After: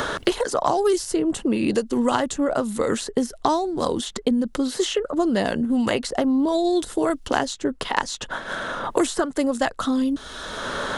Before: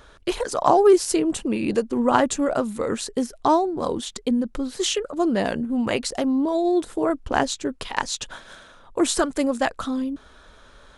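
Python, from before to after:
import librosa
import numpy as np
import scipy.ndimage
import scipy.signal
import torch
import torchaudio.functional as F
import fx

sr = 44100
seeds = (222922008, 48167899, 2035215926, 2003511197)

y = fx.notch(x, sr, hz=2400.0, q=9.4)
y = fx.band_squash(y, sr, depth_pct=100)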